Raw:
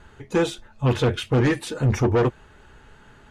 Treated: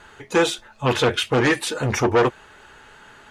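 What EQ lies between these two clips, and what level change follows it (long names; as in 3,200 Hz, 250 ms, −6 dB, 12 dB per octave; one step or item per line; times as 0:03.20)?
low-shelf EQ 130 Hz −6 dB
low-shelf EQ 390 Hz −11 dB
+8.0 dB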